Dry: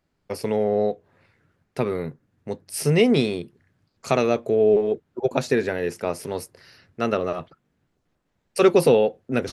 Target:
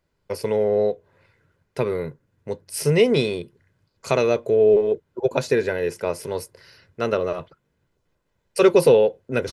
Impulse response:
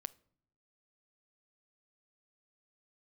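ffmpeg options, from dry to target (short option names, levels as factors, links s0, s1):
-af "aecho=1:1:2:0.42"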